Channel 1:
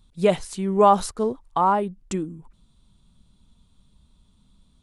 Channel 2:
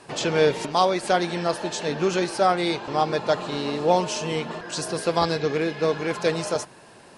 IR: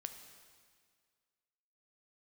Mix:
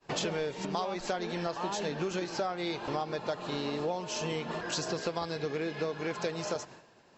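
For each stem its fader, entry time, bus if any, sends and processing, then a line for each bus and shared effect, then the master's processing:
-7.0 dB, 0.00 s, no send, soft clip -15 dBFS, distortion -11 dB
-0.5 dB, 0.00 s, send -18.5 dB, dry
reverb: on, RT60 1.9 s, pre-delay 5 ms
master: expander -39 dBFS; brick-wall FIR low-pass 7800 Hz; compressor 10:1, threshold -30 dBFS, peak gain reduction 16.5 dB

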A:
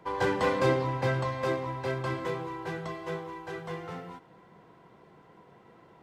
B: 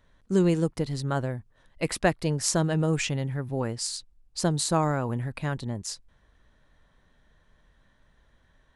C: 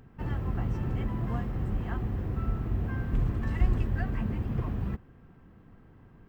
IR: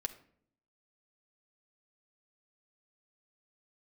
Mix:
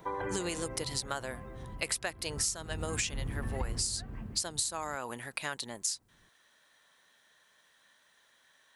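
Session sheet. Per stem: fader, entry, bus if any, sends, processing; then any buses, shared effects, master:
+1.5 dB, 0.00 s, no send, LPF 3100 Hz; spectral gate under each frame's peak -30 dB strong; limiter -25 dBFS, peak gain reduction 10.5 dB; auto duck -18 dB, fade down 1.15 s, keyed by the second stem
0.0 dB, 0.00 s, no send, HPF 320 Hz 6 dB/oct; tilt +4 dB/oct
2.12 s -15 dB -> 2.61 s -4 dB -> 3.86 s -4 dB -> 4.39 s -15 dB, 0.00 s, no send, dry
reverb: off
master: compressor 10:1, threshold -30 dBFS, peak gain reduction 19 dB

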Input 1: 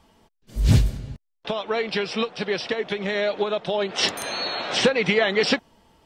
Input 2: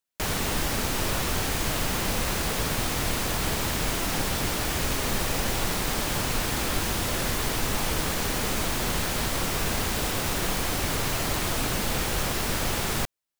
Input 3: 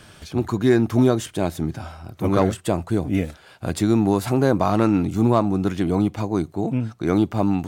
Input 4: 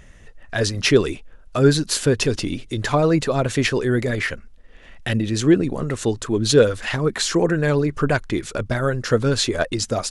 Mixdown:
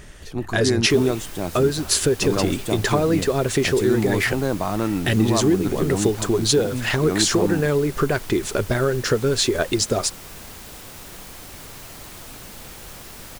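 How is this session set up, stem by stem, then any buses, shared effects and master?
off
-13.5 dB, 0.70 s, no send, dry
-5.0 dB, 0.00 s, no send, dry
+2.5 dB, 0.00 s, no send, bell 390 Hz +9.5 dB 0.3 oct; compressor, threshold -19 dBFS, peak gain reduction 16 dB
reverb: off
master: high shelf 5900 Hz +5.5 dB

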